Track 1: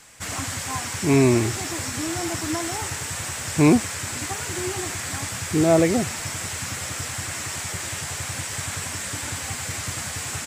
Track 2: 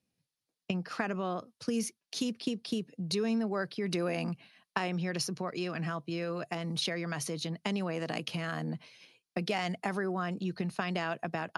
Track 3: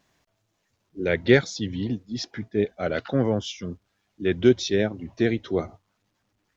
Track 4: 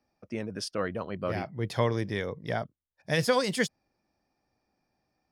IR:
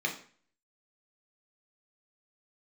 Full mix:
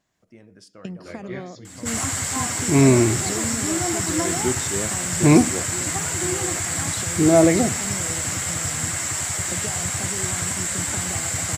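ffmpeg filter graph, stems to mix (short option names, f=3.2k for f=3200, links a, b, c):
-filter_complex "[0:a]adelay=1650,volume=2dB,asplit=2[a][b];[b]volume=-16.5dB[c];[1:a]equalizer=f=1.7k:w=0.74:g=-14,adelay=150,volume=0.5dB[d];[2:a]volume=-6.5dB,asplit=2[e][f];[f]volume=-20dB[g];[3:a]acompressor=threshold=-28dB:ratio=6,volume=-12.5dB,asplit=3[h][i][j];[i]volume=-15dB[k];[j]apad=whole_len=289601[l];[e][l]sidechaincompress=threshold=-54dB:ratio=8:attack=16:release=328[m];[4:a]atrim=start_sample=2205[n];[c][g][k]amix=inputs=3:normalize=0[o];[o][n]afir=irnorm=-1:irlink=0[p];[a][d][m][h][p]amix=inputs=5:normalize=0,equalizer=f=7.4k:t=o:w=0.27:g=8"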